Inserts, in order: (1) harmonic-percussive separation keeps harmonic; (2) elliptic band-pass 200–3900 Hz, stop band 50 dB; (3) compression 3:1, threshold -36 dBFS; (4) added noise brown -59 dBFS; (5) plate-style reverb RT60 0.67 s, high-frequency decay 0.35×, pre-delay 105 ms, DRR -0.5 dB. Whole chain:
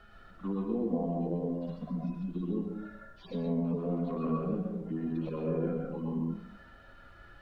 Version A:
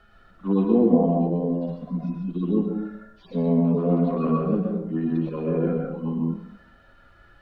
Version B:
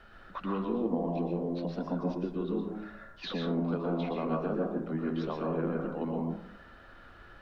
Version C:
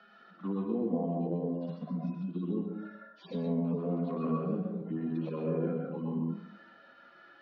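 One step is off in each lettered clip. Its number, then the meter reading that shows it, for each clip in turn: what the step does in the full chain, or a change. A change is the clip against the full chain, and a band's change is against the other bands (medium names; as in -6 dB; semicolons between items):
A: 3, mean gain reduction 8.0 dB; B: 1, 2 kHz band +7.0 dB; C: 4, momentary loudness spread change -1 LU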